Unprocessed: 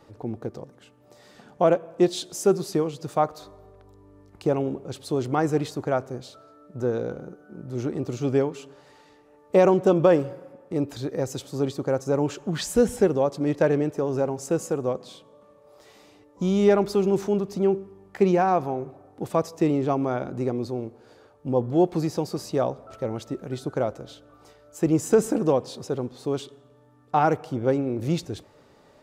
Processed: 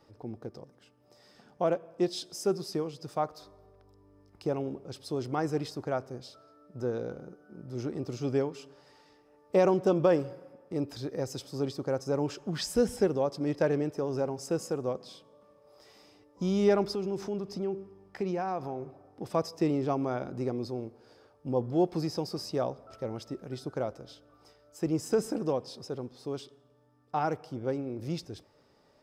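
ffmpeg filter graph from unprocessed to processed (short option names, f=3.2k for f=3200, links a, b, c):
-filter_complex "[0:a]asettb=1/sr,asplit=3[a][b][c];[a]atrim=end=16.874[d];[b]atrim=start=16.87:end=19.32,asetpts=PTS-STARTPTS,afade=t=in:d=0.004:c=qsin,afade=t=out:st=2.446:d=0.004:c=qsin,highshelf=f=11k:g=-7.5,acompressor=threshold=-27dB:ratio=2:attack=3.2:release=140:knee=1:detection=peak[e];[c]atrim=start=19.316[f];[d][e]acrossfade=d=0.004:c1=hsin:c2=qsin[g];[g][f]acrossfade=d=0.004:c1=qsin:c2=hsin,equalizer=f=5.1k:w=8:g=12,bandreject=f=7.1k:w=16,dynaudnorm=f=360:g=31:m=3.5dB,volume=-8.5dB"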